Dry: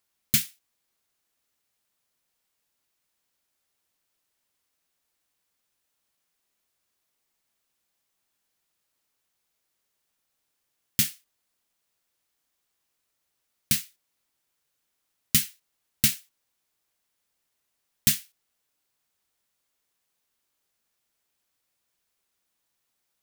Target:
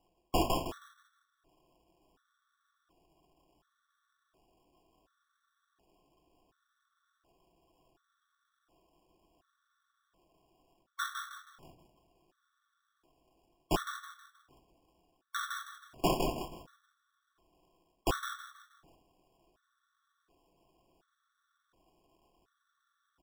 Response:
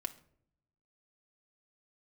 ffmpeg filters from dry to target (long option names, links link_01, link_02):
-filter_complex "[0:a]aemphasis=mode=production:type=cd,areverse,acompressor=threshold=-26dB:ratio=5,areverse,asplit=6[link_01][link_02][link_03][link_04][link_05][link_06];[link_02]adelay=159,afreqshift=40,volume=-3.5dB[link_07];[link_03]adelay=318,afreqshift=80,volume=-12.4dB[link_08];[link_04]adelay=477,afreqshift=120,volume=-21.2dB[link_09];[link_05]adelay=636,afreqshift=160,volume=-30.1dB[link_10];[link_06]adelay=795,afreqshift=200,volume=-39dB[link_11];[link_01][link_07][link_08][link_09][link_10][link_11]amix=inputs=6:normalize=0,acrusher=samples=21:mix=1:aa=0.000001[link_12];[1:a]atrim=start_sample=2205[link_13];[link_12][link_13]afir=irnorm=-1:irlink=0,afftfilt=real='re*gt(sin(2*PI*0.69*pts/sr)*(1-2*mod(floor(b*sr/1024/1100),2)),0)':imag='im*gt(sin(2*PI*0.69*pts/sr)*(1-2*mod(floor(b*sr/1024/1100),2)),0)':win_size=1024:overlap=0.75"